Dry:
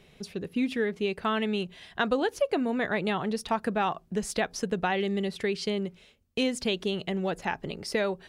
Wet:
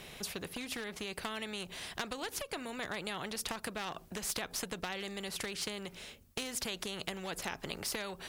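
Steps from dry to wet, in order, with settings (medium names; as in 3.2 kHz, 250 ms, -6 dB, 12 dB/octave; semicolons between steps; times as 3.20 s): treble shelf 9.9 kHz +10 dB; compression 5:1, threshold -30 dBFS, peak gain reduction 9 dB; one-sided clip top -27.5 dBFS; spectrum-flattening compressor 2:1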